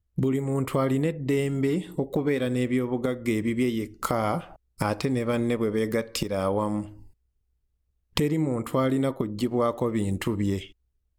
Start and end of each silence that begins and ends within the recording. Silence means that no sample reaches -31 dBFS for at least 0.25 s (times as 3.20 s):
4.44–4.80 s
6.84–8.17 s